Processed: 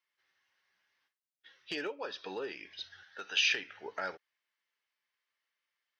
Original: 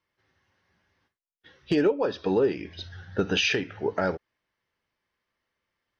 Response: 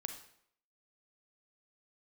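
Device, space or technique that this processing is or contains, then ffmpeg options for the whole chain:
filter by subtraction: -filter_complex "[0:a]asettb=1/sr,asplit=3[link_01][link_02][link_03];[link_01]atrim=end=3.034[link_04];[link_02]atrim=start=3.03:end=3.49,asetpts=PTS-STARTPTS,afade=type=in:duration=0.004:curve=qsin,afade=type=out:start_time=0.456:duration=0.004:curve=qsin,highpass=frequency=880:poles=1[link_05];[link_03]atrim=start=3.486[link_06];[link_04][link_05]acrossfade=duration=0.004:curve1=hsin:curve2=qsin[link_07];[link_07][link_06]acrossfade=duration=0.004:curve1=qsin:curve2=hsin,asplit=2[link_08][link_09];[link_09]lowpass=2500,volume=-1[link_10];[link_08][link_10]amix=inputs=2:normalize=0,volume=-4.5dB"

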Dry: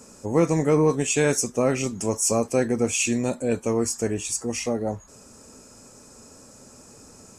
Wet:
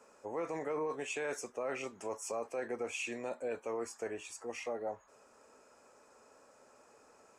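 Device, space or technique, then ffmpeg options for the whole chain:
DJ mixer with the lows and highs turned down: -filter_complex "[0:a]acrossover=split=430 2800:gain=0.0794 1 0.158[link_01][link_02][link_03];[link_01][link_02][link_03]amix=inputs=3:normalize=0,alimiter=limit=-23dB:level=0:latency=1:release=21,volume=-6dB"

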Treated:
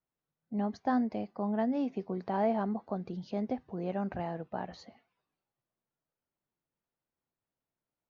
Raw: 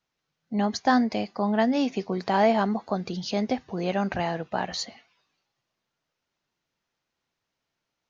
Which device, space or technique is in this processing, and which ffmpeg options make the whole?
through cloth: -af "lowpass=6400,highshelf=frequency=1900:gain=-17.5,volume=-6.5dB"

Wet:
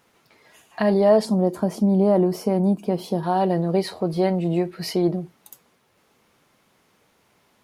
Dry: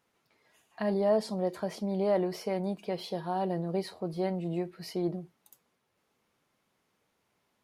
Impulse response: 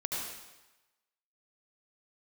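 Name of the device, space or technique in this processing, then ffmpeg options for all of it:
parallel compression: -filter_complex "[0:a]asettb=1/sr,asplit=3[link_01][link_02][link_03];[link_01]atrim=end=1.254[link_04];[link_02]atrim=start=1.25:end=3.23,asetpts=PTS-STARTPTS,afade=type=in:duration=0.004:curve=qsin,afade=type=out:start_time=1.976:duration=0.004:curve=qsin,equalizer=frequency=250:width_type=o:width=1:gain=7,equalizer=frequency=500:width_type=o:width=1:gain=-4,equalizer=frequency=2000:width_type=o:width=1:gain=-10,equalizer=frequency=4000:width_type=o:width=1:gain=-9[link_05];[link_03]atrim=start=3.226[link_06];[link_04][link_05]acrossfade=duration=0.004:curve1=hsin:curve2=qsin[link_07];[link_07][link_06]acrossfade=duration=0.004:curve1=qsin:curve2=hsin,asplit=2[link_08][link_09];[link_09]acompressor=threshold=-39dB:ratio=6,volume=-3.5dB[link_10];[link_08][link_10]amix=inputs=2:normalize=0,volume=9dB"

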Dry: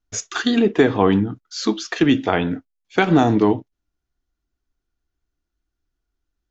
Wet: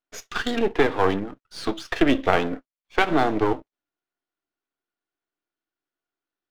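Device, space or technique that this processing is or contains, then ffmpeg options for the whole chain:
crystal radio: -filter_complex "[0:a]asettb=1/sr,asplit=3[link_01][link_02][link_03];[link_01]atrim=end=1.914[link_04];[link_02]atrim=start=1.91:end=2.56,asetpts=PTS-STARTPTS,afade=type=in:duration=0.004:curve=qsin,afade=type=out:start_time=0.646:duration=0.004:curve=qsin,equalizer=frequency=350:width=0.43:gain=4[link_05];[link_03]atrim=start=2.556[link_06];[link_04][link_05]acrossfade=duration=0.004:curve1=hsin:curve2=qsin[link_07];[link_07][link_06]acrossfade=duration=0.004:curve1=qsin:curve2=hsin,highpass=370,lowpass=3500,aeval=exprs='if(lt(val(0),0),0.251*val(0),val(0))':channel_layout=same,volume=1.5dB"

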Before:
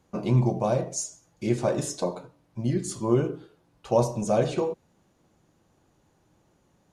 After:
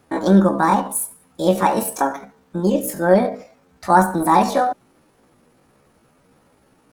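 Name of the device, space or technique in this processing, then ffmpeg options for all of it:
chipmunk voice: -af "asetrate=68011,aresample=44100,atempo=0.64842,volume=8.5dB"

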